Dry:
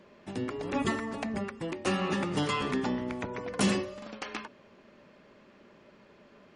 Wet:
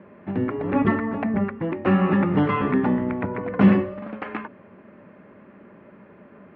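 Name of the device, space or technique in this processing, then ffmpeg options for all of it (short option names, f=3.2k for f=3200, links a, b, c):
bass cabinet: -af "highpass=61,equalizer=f=100:t=q:w=4:g=6,equalizer=f=190:t=q:w=4:g=6,equalizer=f=290:t=q:w=4:g=3,lowpass=f=2.1k:w=0.5412,lowpass=f=2.1k:w=1.3066,volume=7.5dB"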